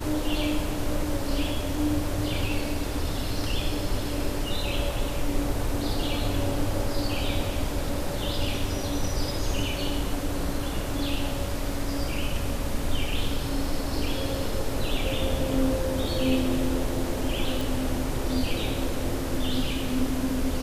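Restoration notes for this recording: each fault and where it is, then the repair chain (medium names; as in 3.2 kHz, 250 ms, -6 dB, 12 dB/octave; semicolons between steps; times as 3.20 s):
17.61 s: pop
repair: de-click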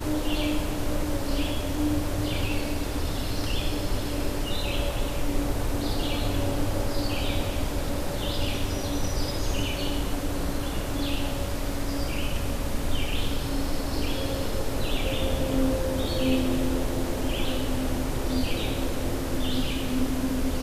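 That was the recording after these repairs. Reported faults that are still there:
nothing left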